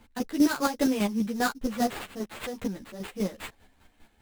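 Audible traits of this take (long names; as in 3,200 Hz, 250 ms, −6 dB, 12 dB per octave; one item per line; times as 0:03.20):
chopped level 5 Hz, depth 60%, duty 30%
aliases and images of a low sample rate 5,700 Hz, jitter 20%
a shimmering, thickened sound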